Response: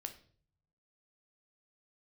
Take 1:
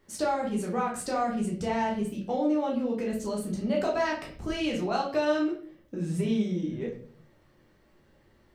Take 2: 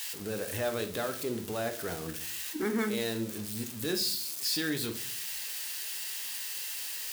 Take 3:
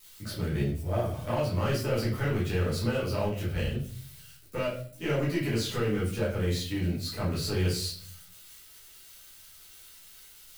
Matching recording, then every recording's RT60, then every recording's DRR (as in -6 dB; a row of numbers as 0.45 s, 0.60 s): 2; 0.50 s, 0.50 s, 0.50 s; -3.0 dB, 6.0 dB, -8.5 dB